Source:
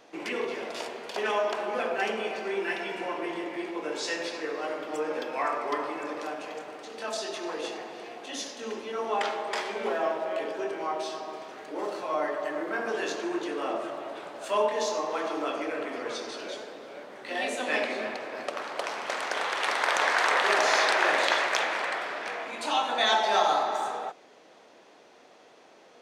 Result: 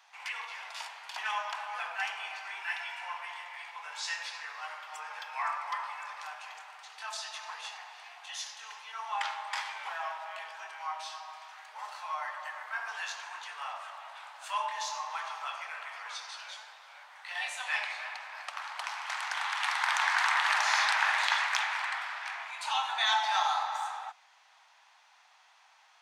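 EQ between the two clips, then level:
elliptic high-pass filter 850 Hz, stop band 70 dB
−2.0 dB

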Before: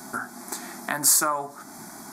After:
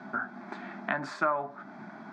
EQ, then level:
loudspeaker in its box 120–3,100 Hz, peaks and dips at 140 Hz +3 dB, 200 Hz +8 dB, 620 Hz +6 dB, 1,500 Hz +5 dB, 2,800 Hz +7 dB
−5.0 dB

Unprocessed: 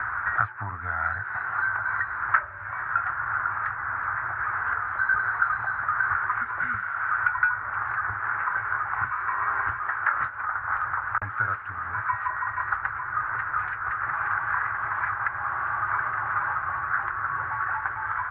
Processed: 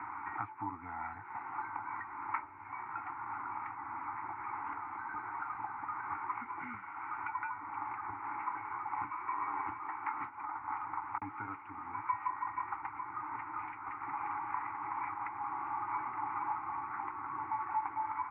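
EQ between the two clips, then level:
formant filter u
high-frequency loss of the air 190 metres
+8.5 dB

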